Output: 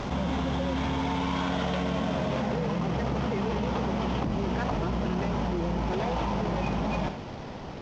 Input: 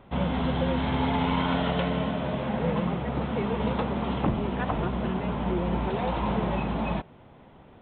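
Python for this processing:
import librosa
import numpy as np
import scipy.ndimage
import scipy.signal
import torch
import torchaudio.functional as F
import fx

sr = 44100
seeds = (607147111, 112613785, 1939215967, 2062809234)

y = fx.cvsd(x, sr, bps=32000)
y = fx.doppler_pass(y, sr, speed_mps=11, closest_m=3.3, pass_at_s=2.38)
y = y + 10.0 ** (-22.5 / 20.0) * np.pad(y, (int(83 * sr / 1000.0), 0))[:len(y)]
y = fx.env_flatten(y, sr, amount_pct=100)
y = y * librosa.db_to_amplitude(-2.5)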